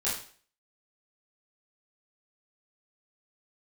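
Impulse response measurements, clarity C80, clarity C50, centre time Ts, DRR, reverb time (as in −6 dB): 9.0 dB, 4.0 dB, 41 ms, −9.5 dB, 0.45 s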